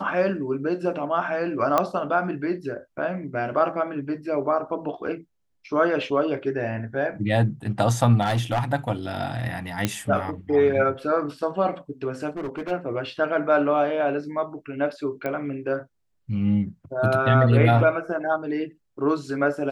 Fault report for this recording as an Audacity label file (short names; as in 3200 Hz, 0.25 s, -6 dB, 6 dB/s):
1.780000	1.780000	pop -7 dBFS
8.210000	8.630000	clipped -18.5 dBFS
9.850000	9.850000	pop -7 dBFS
12.370000	12.720000	clipped -26.5 dBFS
15.260000	15.260000	pop -16 dBFS